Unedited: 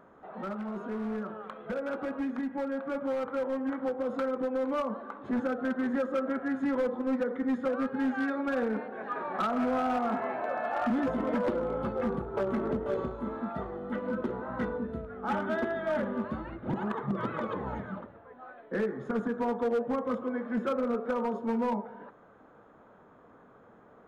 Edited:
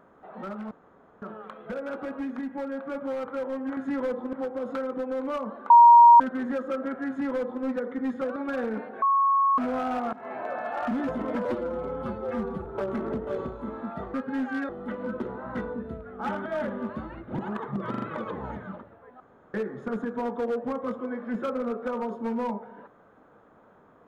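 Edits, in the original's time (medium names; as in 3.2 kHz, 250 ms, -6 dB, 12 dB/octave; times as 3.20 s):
0.71–1.22 s: room tone
5.14–5.64 s: bleep 945 Hz -9 dBFS
6.52–7.08 s: copy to 3.77 s
7.80–8.35 s: move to 13.73 s
9.01–9.57 s: bleep 1.1 kHz -18.5 dBFS
10.12–10.38 s: fade in, from -22.5 dB
11.44–12.24 s: stretch 1.5×
15.50–15.81 s: delete
17.25 s: stutter 0.04 s, 4 plays
18.43–18.77 s: room tone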